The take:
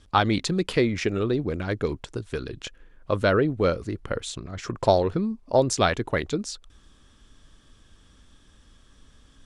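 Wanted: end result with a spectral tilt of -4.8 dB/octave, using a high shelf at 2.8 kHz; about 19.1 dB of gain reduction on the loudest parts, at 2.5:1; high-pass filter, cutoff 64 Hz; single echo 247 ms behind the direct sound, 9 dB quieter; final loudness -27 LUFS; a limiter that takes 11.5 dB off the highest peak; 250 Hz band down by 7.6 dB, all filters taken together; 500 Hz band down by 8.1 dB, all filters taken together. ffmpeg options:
-af "highpass=64,equalizer=f=250:t=o:g=-8,equalizer=f=500:t=o:g=-8,highshelf=f=2800:g=-3.5,acompressor=threshold=0.00355:ratio=2.5,alimiter=level_in=4.47:limit=0.0631:level=0:latency=1,volume=0.224,aecho=1:1:247:0.355,volume=11.2"

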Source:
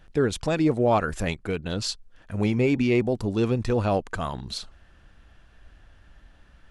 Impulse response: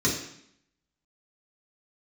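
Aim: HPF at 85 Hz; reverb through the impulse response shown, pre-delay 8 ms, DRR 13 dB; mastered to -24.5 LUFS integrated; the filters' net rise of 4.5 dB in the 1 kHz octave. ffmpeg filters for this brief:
-filter_complex "[0:a]highpass=85,equalizer=f=1000:t=o:g=6,asplit=2[s0][s1];[1:a]atrim=start_sample=2205,adelay=8[s2];[s1][s2]afir=irnorm=-1:irlink=0,volume=0.0562[s3];[s0][s3]amix=inputs=2:normalize=0,volume=0.891"

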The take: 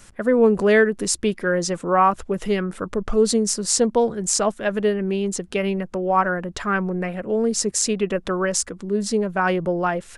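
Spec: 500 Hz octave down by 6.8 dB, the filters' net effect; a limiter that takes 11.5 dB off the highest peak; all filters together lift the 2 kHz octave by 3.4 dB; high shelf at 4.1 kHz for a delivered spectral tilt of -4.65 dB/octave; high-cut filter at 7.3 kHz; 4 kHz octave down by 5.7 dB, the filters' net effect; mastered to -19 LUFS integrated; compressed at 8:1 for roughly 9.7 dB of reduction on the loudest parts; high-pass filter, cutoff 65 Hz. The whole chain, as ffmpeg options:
-af "highpass=65,lowpass=7300,equalizer=f=500:t=o:g=-8.5,equalizer=f=2000:t=o:g=7,equalizer=f=4000:t=o:g=-6.5,highshelf=f=4100:g=-3.5,acompressor=threshold=0.0794:ratio=8,volume=4.22,alimiter=limit=0.299:level=0:latency=1"

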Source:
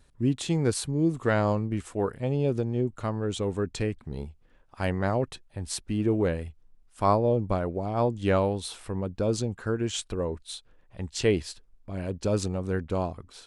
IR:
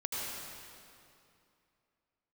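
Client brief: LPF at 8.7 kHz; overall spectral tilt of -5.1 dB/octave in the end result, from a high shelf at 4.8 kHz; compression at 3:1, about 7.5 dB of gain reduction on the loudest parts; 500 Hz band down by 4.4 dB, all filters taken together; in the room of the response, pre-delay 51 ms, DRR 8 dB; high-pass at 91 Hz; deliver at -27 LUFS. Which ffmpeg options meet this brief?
-filter_complex "[0:a]highpass=91,lowpass=8700,equalizer=f=500:t=o:g=-5.5,highshelf=f=4800:g=3,acompressor=threshold=0.0282:ratio=3,asplit=2[s0][s1];[1:a]atrim=start_sample=2205,adelay=51[s2];[s1][s2]afir=irnorm=-1:irlink=0,volume=0.237[s3];[s0][s3]amix=inputs=2:normalize=0,volume=2.51"

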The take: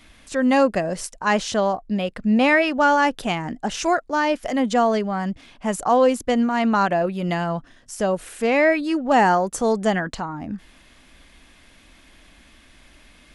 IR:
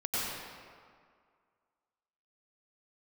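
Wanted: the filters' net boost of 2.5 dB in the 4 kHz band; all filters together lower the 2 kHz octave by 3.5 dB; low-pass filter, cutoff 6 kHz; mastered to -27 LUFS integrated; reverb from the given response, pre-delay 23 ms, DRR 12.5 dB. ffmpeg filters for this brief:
-filter_complex "[0:a]lowpass=6000,equalizer=f=2000:t=o:g=-6,equalizer=f=4000:t=o:g=7,asplit=2[s0][s1];[1:a]atrim=start_sample=2205,adelay=23[s2];[s1][s2]afir=irnorm=-1:irlink=0,volume=0.1[s3];[s0][s3]amix=inputs=2:normalize=0,volume=0.501"

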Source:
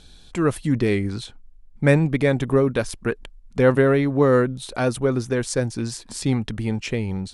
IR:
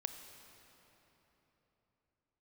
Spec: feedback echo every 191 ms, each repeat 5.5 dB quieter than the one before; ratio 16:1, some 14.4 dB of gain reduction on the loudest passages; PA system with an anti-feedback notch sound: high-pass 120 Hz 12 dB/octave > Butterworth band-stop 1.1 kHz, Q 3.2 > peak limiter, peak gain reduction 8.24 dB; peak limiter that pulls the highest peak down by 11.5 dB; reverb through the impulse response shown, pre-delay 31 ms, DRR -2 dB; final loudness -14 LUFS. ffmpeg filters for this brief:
-filter_complex "[0:a]acompressor=threshold=0.0501:ratio=16,alimiter=level_in=1.33:limit=0.0631:level=0:latency=1,volume=0.75,aecho=1:1:191|382|573|764|955|1146|1337:0.531|0.281|0.149|0.079|0.0419|0.0222|0.0118,asplit=2[s0][s1];[1:a]atrim=start_sample=2205,adelay=31[s2];[s1][s2]afir=irnorm=-1:irlink=0,volume=1.5[s3];[s0][s3]amix=inputs=2:normalize=0,highpass=120,asuperstop=centerf=1100:order=8:qfactor=3.2,volume=9.44,alimiter=limit=0.562:level=0:latency=1"

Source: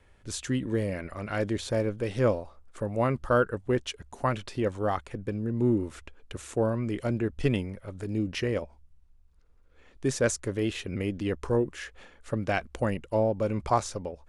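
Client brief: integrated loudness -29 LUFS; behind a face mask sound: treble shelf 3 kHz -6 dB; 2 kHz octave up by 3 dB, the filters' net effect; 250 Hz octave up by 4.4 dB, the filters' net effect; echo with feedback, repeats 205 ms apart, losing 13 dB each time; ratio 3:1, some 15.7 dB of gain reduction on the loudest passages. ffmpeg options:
-af "equalizer=f=250:t=o:g=5.5,equalizer=f=2000:t=o:g=6,acompressor=threshold=0.0112:ratio=3,highshelf=f=3000:g=-6,aecho=1:1:205|410|615:0.224|0.0493|0.0108,volume=3.55"

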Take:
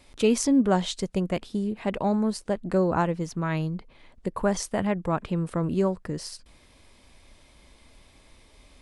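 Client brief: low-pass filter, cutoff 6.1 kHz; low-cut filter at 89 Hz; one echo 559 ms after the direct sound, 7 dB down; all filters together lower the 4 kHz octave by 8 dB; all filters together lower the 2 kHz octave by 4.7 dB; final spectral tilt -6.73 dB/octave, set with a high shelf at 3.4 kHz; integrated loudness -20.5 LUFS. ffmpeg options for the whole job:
-af "highpass=89,lowpass=6100,equalizer=f=2000:t=o:g=-3.5,highshelf=f=3400:g=-7.5,equalizer=f=4000:t=o:g=-3,aecho=1:1:559:0.447,volume=2.11"

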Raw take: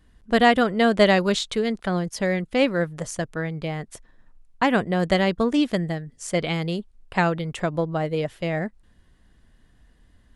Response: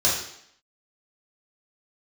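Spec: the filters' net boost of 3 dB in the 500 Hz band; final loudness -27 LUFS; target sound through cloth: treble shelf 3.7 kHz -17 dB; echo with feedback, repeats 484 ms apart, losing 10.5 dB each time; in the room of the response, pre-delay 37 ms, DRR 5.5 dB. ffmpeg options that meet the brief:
-filter_complex "[0:a]equalizer=f=500:t=o:g=4,aecho=1:1:484|968|1452:0.299|0.0896|0.0269,asplit=2[s0][s1];[1:a]atrim=start_sample=2205,adelay=37[s2];[s1][s2]afir=irnorm=-1:irlink=0,volume=0.1[s3];[s0][s3]amix=inputs=2:normalize=0,highshelf=f=3700:g=-17,volume=0.501"

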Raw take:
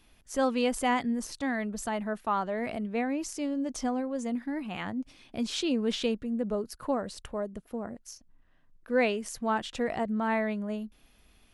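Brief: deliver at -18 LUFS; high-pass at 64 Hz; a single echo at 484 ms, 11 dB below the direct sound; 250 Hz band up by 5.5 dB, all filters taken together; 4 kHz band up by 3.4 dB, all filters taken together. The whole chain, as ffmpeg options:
-af "highpass=64,equalizer=f=250:t=o:g=6,equalizer=f=4000:t=o:g=4.5,aecho=1:1:484:0.282,volume=2.99"

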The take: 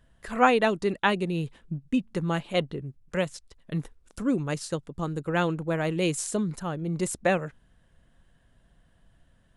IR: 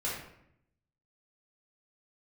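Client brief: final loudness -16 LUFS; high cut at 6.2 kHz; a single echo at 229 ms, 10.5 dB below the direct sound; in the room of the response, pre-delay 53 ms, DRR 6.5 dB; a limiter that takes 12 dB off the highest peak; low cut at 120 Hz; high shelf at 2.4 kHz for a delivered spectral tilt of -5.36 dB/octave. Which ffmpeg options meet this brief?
-filter_complex "[0:a]highpass=120,lowpass=6200,highshelf=f=2400:g=-6.5,alimiter=limit=0.106:level=0:latency=1,aecho=1:1:229:0.299,asplit=2[s0][s1];[1:a]atrim=start_sample=2205,adelay=53[s2];[s1][s2]afir=irnorm=-1:irlink=0,volume=0.266[s3];[s0][s3]amix=inputs=2:normalize=0,volume=5.31"

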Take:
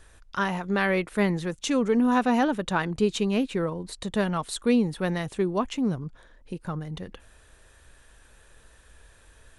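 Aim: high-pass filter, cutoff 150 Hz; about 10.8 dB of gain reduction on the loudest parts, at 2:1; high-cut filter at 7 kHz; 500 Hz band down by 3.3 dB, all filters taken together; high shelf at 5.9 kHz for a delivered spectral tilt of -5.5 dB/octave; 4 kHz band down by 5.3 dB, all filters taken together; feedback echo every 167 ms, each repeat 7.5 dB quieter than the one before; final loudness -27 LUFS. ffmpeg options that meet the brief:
-af "highpass=150,lowpass=7000,equalizer=f=500:t=o:g=-4,equalizer=f=4000:t=o:g=-8,highshelf=f=5900:g=4,acompressor=threshold=0.00891:ratio=2,aecho=1:1:167|334|501|668|835:0.422|0.177|0.0744|0.0312|0.0131,volume=3.16"

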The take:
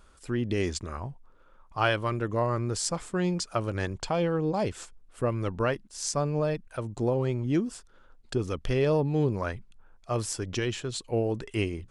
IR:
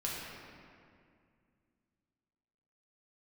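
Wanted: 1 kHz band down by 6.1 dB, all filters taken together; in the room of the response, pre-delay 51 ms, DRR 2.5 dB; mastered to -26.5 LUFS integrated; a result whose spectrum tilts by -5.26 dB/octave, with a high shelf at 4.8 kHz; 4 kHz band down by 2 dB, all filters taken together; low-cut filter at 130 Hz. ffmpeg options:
-filter_complex "[0:a]highpass=130,equalizer=f=1000:t=o:g=-8.5,equalizer=f=4000:t=o:g=-5.5,highshelf=f=4800:g=5.5,asplit=2[s0][s1];[1:a]atrim=start_sample=2205,adelay=51[s2];[s1][s2]afir=irnorm=-1:irlink=0,volume=0.473[s3];[s0][s3]amix=inputs=2:normalize=0,volume=1.41"

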